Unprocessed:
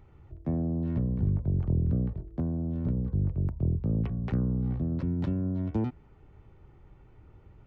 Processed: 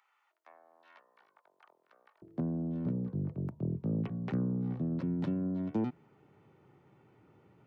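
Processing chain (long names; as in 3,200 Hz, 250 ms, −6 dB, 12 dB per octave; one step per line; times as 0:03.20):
high-pass filter 1,000 Hz 24 dB per octave, from 0:02.22 140 Hz
level −1.5 dB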